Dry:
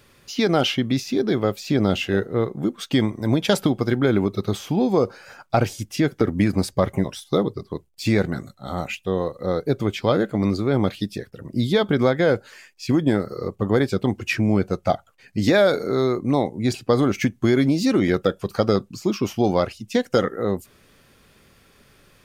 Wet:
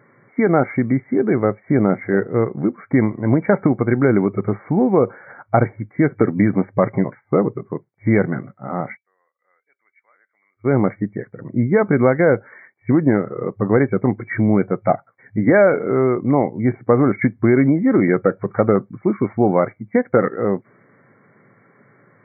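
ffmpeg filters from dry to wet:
-filter_complex "[0:a]asplit=3[a][b][c];[a]afade=t=out:st=8.96:d=0.02[d];[b]asuperpass=centerf=4600:order=4:qfactor=2.2,afade=t=in:st=8.96:d=0.02,afade=t=out:st=10.64:d=0.02[e];[c]afade=t=in:st=10.64:d=0.02[f];[d][e][f]amix=inputs=3:normalize=0,afftfilt=real='re*between(b*sr/4096,100,2300)':imag='im*between(b*sr/4096,100,2300)':win_size=4096:overlap=0.75,volume=4dB"

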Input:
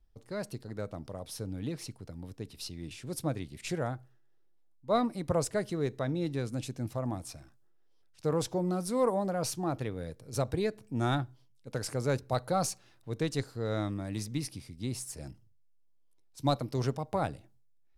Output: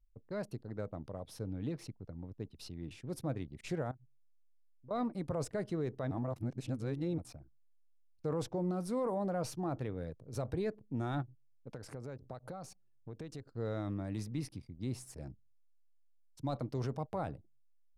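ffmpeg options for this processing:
-filter_complex "[0:a]asettb=1/sr,asplit=3[a][b][c];[a]atrim=end=3.914[d];[b]atrim=start=3.91:end=4.91,asetpts=PTS-STARTPTS,afade=t=in:d=0.004:c=qsin,afade=t=out:st=0.996:d=0.004:c=qsin,acompressor=threshold=-47dB:ratio=16:attack=3.2:release=140:knee=1:detection=peak[e];[c]atrim=start=4.906[f];[d][e]acrossfade=d=0.004:c1=hsin:c2=qsin[g];[g][f]acrossfade=d=0.004:c1=qsin:c2=hsin,asplit=3[h][i][j];[h]afade=t=out:st=11.21:d=0.02[k];[i]acompressor=threshold=-38dB:ratio=12:attack=3.2:release=140:knee=1:detection=peak,afade=t=in:st=11.21:d=0.02,afade=t=out:st=13.56:d=0.02[l];[j]afade=t=in:st=13.56:d=0.02[m];[k][l][m]amix=inputs=3:normalize=0,asplit=3[n][o][p];[n]atrim=end=6.112[q];[o]atrim=start=6.108:end=7.182,asetpts=PTS-STARTPTS,areverse[r];[p]atrim=start=7.178[s];[q][r]acrossfade=d=0.004:c1=hsin:c2=hsin[t];[t][s]acrossfade=d=0.004:c1=hsin:c2=hsin,anlmdn=0.00398,highshelf=f=2.7k:g=-10,alimiter=level_in=2dB:limit=-24dB:level=0:latency=1:release=17,volume=-2dB,volume=-2dB"

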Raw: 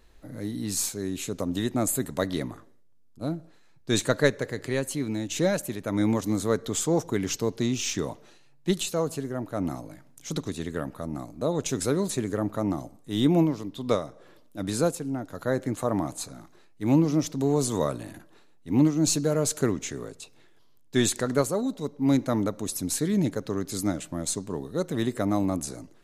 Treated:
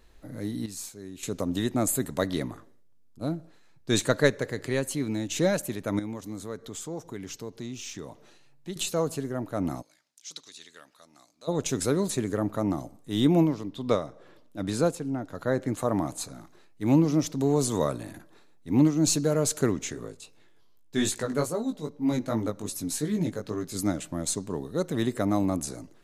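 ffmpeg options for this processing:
-filter_complex "[0:a]asettb=1/sr,asplit=3[a][b][c];[a]atrim=end=5.994[d];[b]atrim=start=5.99:end=8.76,asetpts=PTS-STARTPTS,afade=t=in:d=0.004:c=qsin,afade=t=out:st=2.766:d=0.004:c=qsin,acompressor=threshold=-53dB:ratio=1.5:attack=3.2:release=140:knee=1:detection=peak[e];[c]atrim=start=8.756[f];[d][e]acrossfade=d=0.004:c1=hsin:c2=qsin[g];[g][f]acrossfade=d=0.004:c1=qsin:c2=hsin,asplit=3[h][i][j];[h]afade=t=out:st=9.81:d=0.02[k];[i]bandpass=f=4.8k:t=q:w=1.3,afade=t=in:st=9.81:d=0.02,afade=t=out:st=11.47:d=0.02[l];[j]afade=t=in:st=11.47:d=0.02[m];[k][l][m]amix=inputs=3:normalize=0,asettb=1/sr,asplit=3[n][o][p];[n]atrim=end=13.544[q];[o]atrim=start=13.54:end=15.68,asetpts=PTS-STARTPTS,afade=t=in:d=0.004:c=qsin,afade=t=out:st=2.136:d=0.004:c=qsin,highshelf=f=8k:g=-9[r];[p]atrim=start=15.676[s];[q][r]acrossfade=d=0.004:c1=hsin:c2=qsin[t];[t][s]acrossfade=d=0.004:c1=qsin:c2=hsin,asettb=1/sr,asplit=3[u][v][w];[u]atrim=end=17.904[x];[v]atrim=start=17.9:end=18.78,asetpts=PTS-STARTPTS,afade=t=in:d=0.004:c=qsin,afade=t=out:st=0.876:d=0.004:c=qsin,bandreject=f=2.9k:w=12[y];[w]atrim=start=18.776[z];[x][y]acrossfade=d=0.004:c1=hsin:c2=qsin[aa];[aa][z]acrossfade=d=0.004:c1=qsin:c2=hsin,asplit=3[ab][ac][ad];[ab]afade=t=out:st=19.93:d=0.02[ae];[ac]flanger=delay=17.5:depth=2.8:speed=2.5,afade=t=in:st=19.93:d=0.02,afade=t=out:st=23.77:d=0.02[af];[ad]afade=t=in:st=23.77:d=0.02[ag];[ae][af][ag]amix=inputs=3:normalize=0,asplit=3[ah][ai][aj];[ah]atrim=end=0.662[ak];[ai]atrim=start=0.658:end=1.232,asetpts=PTS-STARTPTS,volume=-10.5dB[al];[aj]atrim=start=1.228[am];[ak][al]acrossfade=d=0.004:c1=hsin:c2=hsin[an];[an][am]acrossfade=d=0.004:c1=hsin:c2=hsin"

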